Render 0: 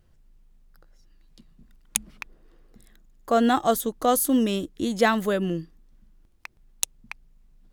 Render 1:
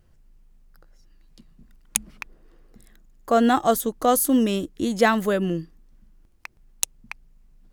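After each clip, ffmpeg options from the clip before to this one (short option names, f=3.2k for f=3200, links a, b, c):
-af "equalizer=f=3.6k:w=3.3:g=-3,volume=2dB"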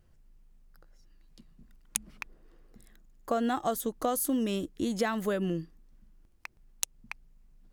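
-af "acompressor=threshold=-21dB:ratio=6,volume=-4.5dB"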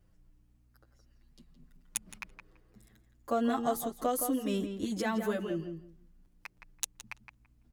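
-filter_complex "[0:a]aeval=exprs='val(0)+0.000398*(sin(2*PI*60*n/s)+sin(2*PI*2*60*n/s)/2+sin(2*PI*3*60*n/s)/3+sin(2*PI*4*60*n/s)/4+sin(2*PI*5*60*n/s)/5)':c=same,asplit=2[a][b];[b]adelay=167,lowpass=f=2.4k:p=1,volume=-7dB,asplit=2[c][d];[d]adelay=167,lowpass=f=2.4k:p=1,volume=0.18,asplit=2[e][f];[f]adelay=167,lowpass=f=2.4k:p=1,volume=0.18[g];[c][e][g]amix=inputs=3:normalize=0[h];[a][h]amix=inputs=2:normalize=0,asplit=2[i][j];[j]adelay=7.7,afreqshift=0.45[k];[i][k]amix=inputs=2:normalize=1"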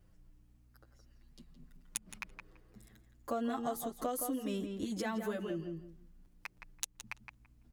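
-af "acompressor=threshold=-40dB:ratio=2,volume=1.5dB"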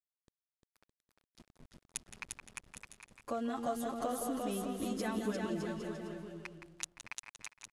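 -af "aeval=exprs='val(0)*gte(abs(val(0)),0.00266)':c=same,lowpass=f=11k:w=0.5412,lowpass=f=11k:w=1.3066,aecho=1:1:350|612.5|809.4|957|1068:0.631|0.398|0.251|0.158|0.1,volume=-1.5dB"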